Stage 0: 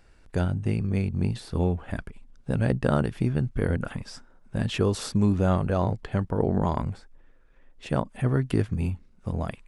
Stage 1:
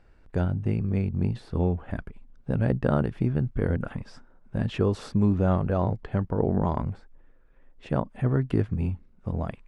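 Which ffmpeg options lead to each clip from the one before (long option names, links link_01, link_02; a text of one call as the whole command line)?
ffmpeg -i in.wav -af "lowpass=frequency=1600:poles=1" out.wav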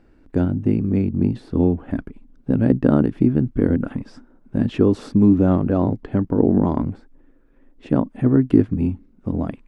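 ffmpeg -i in.wav -af "equalizer=frequency=280:width_type=o:width=0.89:gain=15,volume=1dB" out.wav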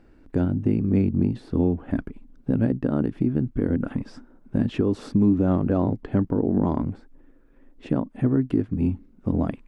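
ffmpeg -i in.wav -af "alimiter=limit=-11.5dB:level=0:latency=1:release=373" out.wav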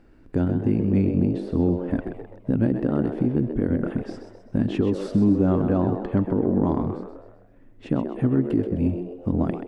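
ffmpeg -i in.wav -filter_complex "[0:a]asplit=6[link_01][link_02][link_03][link_04][link_05][link_06];[link_02]adelay=129,afreqshift=89,volume=-9dB[link_07];[link_03]adelay=258,afreqshift=178,volume=-16.1dB[link_08];[link_04]adelay=387,afreqshift=267,volume=-23.3dB[link_09];[link_05]adelay=516,afreqshift=356,volume=-30.4dB[link_10];[link_06]adelay=645,afreqshift=445,volume=-37.5dB[link_11];[link_01][link_07][link_08][link_09][link_10][link_11]amix=inputs=6:normalize=0" out.wav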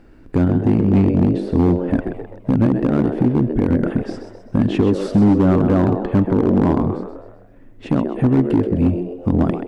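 ffmpeg -i in.wav -af "asoftclip=type=hard:threshold=-16dB,volume=7dB" out.wav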